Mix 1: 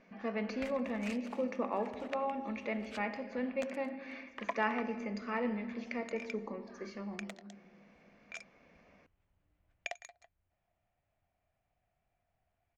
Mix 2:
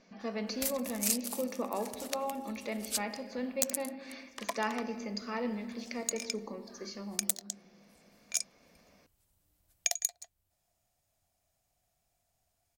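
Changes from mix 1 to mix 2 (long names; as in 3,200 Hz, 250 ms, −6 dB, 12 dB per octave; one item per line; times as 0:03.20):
background: remove high-frequency loss of the air 160 metres
master: add high shelf with overshoot 3,300 Hz +10.5 dB, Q 1.5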